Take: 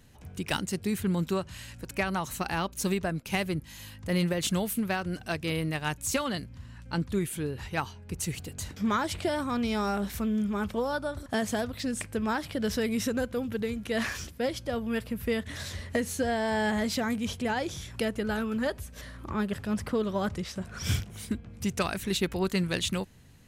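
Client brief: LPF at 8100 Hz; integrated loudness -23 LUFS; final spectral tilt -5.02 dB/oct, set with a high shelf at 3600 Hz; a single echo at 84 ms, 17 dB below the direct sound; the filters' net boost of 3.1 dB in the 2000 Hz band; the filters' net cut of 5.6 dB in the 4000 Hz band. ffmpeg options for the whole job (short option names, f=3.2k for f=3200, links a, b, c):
-af "lowpass=8.1k,equalizer=f=2k:t=o:g=7,highshelf=f=3.6k:g=-7.5,equalizer=f=4k:t=o:g=-5.5,aecho=1:1:84:0.141,volume=7.5dB"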